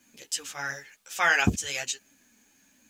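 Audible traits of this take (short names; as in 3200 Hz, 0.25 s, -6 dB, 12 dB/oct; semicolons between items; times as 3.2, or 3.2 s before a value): a quantiser's noise floor 12-bit, dither none; a shimmering, thickened sound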